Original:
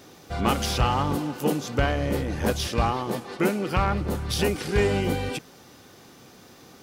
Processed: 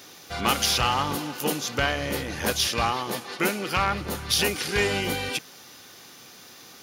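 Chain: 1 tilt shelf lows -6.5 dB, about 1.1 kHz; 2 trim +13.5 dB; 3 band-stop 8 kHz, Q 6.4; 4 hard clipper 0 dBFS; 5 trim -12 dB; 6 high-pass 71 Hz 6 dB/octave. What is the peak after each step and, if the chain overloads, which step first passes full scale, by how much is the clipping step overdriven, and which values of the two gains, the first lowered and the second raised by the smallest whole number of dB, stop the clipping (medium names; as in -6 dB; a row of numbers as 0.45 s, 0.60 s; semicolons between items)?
-9.5 dBFS, +4.0 dBFS, +4.0 dBFS, 0.0 dBFS, -12.0 dBFS, -10.0 dBFS; step 2, 4.0 dB; step 2 +9.5 dB, step 5 -8 dB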